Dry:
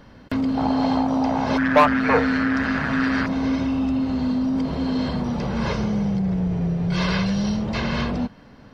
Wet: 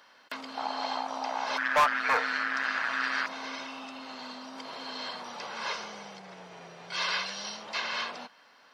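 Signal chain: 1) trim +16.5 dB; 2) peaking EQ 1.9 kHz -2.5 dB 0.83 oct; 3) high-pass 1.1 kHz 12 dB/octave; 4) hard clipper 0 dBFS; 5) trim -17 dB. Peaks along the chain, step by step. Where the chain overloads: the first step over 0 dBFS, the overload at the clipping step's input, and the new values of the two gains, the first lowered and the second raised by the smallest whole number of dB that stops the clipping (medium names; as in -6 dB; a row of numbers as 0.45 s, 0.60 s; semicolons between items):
+11.0 dBFS, +11.0 dBFS, +7.5 dBFS, 0.0 dBFS, -17.0 dBFS; step 1, 7.5 dB; step 1 +8.5 dB, step 5 -9 dB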